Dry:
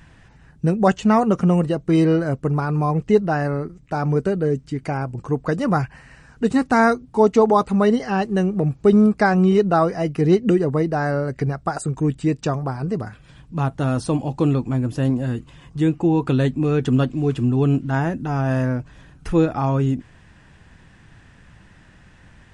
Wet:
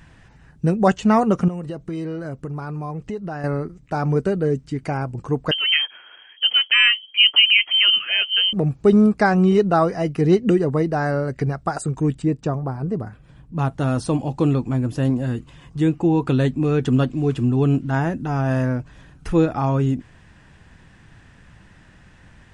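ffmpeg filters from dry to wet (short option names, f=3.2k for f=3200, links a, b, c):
-filter_complex "[0:a]asettb=1/sr,asplit=3[a][b][c];[a]atrim=end=1.484[d];[b]atrim=start=1.48:end=3.44,asetpts=PTS-STARTPTS,afade=t=in:d=0.004:c=qsin,afade=t=out:st=1.956:d=0.004:c=qsin,acompressor=threshold=-26dB:ratio=5:attack=3.2:release=140:knee=1:detection=peak[e];[c]atrim=start=3.436[f];[d][e]acrossfade=d=0.004:c1=hsin:c2=qsin[g];[g][f]acrossfade=d=0.004:c1=qsin:c2=hsin,asettb=1/sr,asplit=3[h][i][j];[h]atrim=end=5.514[k];[i]atrim=start=5.51:end=8.53,asetpts=PTS-STARTPTS,afade=t=in:d=0.004:c=qsin,afade=t=out:st=3.016:d=0.004:c=qsin,lowpass=f=2.8k:t=q:w=0.5098,lowpass=f=2.8k:t=q:w=0.6013,lowpass=f=2.8k:t=q:w=0.9,lowpass=f=2.8k:t=q:w=2.563,afreqshift=-3300[l];[j]atrim=start=8.526[m];[k][l]acrossfade=d=0.004:c1=hsin:c2=qsin[n];[n][m]acrossfade=d=0.004:c1=qsin:c2=hsin,asettb=1/sr,asplit=3[o][p][q];[o]atrim=end=12.224[r];[p]atrim=start=12.22:end=13.59,asetpts=PTS-STARTPTS,afade=t=in:d=0.004:c=qsin,afade=t=out:st=1.366:d=0.004:c=qsin,equalizer=f=5k:w=0.3:g=-10.5[s];[q]atrim=start=13.586[t];[r][s]acrossfade=d=0.004:c1=hsin:c2=qsin[u];[u][t]acrossfade=d=0.004:c1=qsin:c2=hsin"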